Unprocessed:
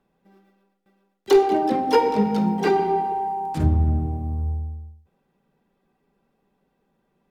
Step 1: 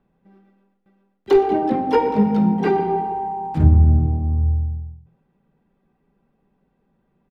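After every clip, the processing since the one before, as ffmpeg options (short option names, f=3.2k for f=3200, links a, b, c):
-filter_complex "[0:a]bass=f=250:g=7,treble=f=4k:g=-13,asplit=3[a][b][c];[b]adelay=119,afreqshift=42,volume=-21dB[d];[c]adelay=238,afreqshift=84,volume=-30.9dB[e];[a][d][e]amix=inputs=3:normalize=0"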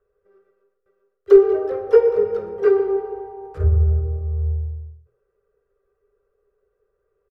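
-af "firequalizer=gain_entry='entry(100,0);entry(150,-22);entry(280,-30);entry(410,13);entry(860,-16);entry(1200,6);entry(2100,-6);entry(3600,-10);entry(5300,-4)':delay=0.05:min_phase=1,volume=-3.5dB"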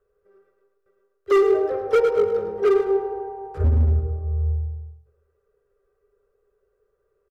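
-af "volume=13.5dB,asoftclip=hard,volume=-13.5dB,aecho=1:1:106|212|318|424:0.299|0.107|0.0387|0.0139"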